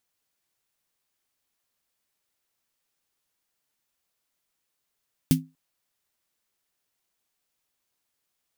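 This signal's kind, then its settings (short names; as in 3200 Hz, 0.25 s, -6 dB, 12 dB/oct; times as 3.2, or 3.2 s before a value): snare drum length 0.24 s, tones 160 Hz, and 260 Hz, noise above 2100 Hz, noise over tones -8.5 dB, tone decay 0.25 s, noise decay 0.12 s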